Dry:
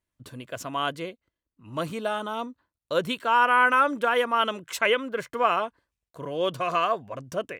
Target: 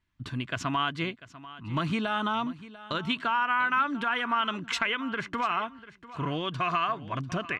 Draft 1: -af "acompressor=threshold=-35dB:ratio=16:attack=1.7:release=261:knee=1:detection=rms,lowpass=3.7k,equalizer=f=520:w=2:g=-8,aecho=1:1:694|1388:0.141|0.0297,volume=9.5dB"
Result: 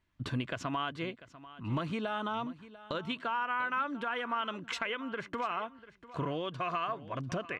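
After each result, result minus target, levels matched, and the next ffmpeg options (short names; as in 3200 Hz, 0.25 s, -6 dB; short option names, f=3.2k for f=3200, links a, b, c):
compressor: peak gain reduction +8.5 dB; 500 Hz band +4.5 dB
-af "acompressor=threshold=-26dB:ratio=16:attack=1.7:release=261:knee=1:detection=rms,lowpass=3.7k,equalizer=f=520:w=2:g=-8,aecho=1:1:694|1388:0.141|0.0297,volume=9.5dB"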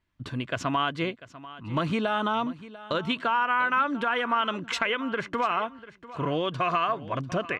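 500 Hz band +5.0 dB
-af "acompressor=threshold=-26dB:ratio=16:attack=1.7:release=261:knee=1:detection=rms,lowpass=3.7k,equalizer=f=520:w=2:g=-18.5,aecho=1:1:694|1388:0.141|0.0297,volume=9.5dB"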